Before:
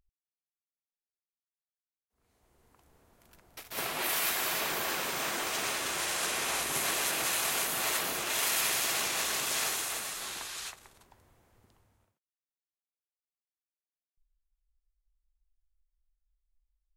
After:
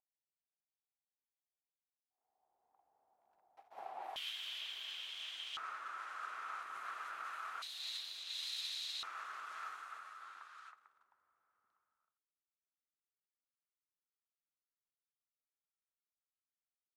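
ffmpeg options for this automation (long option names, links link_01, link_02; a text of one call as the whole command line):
ffmpeg -i in.wav -af "asetnsamples=nb_out_samples=441:pad=0,asendcmd='4.16 bandpass f 3200;5.57 bandpass f 1300;7.62 bandpass f 3900;9.03 bandpass f 1300',bandpass=frequency=780:width_type=q:width=8.3:csg=0" out.wav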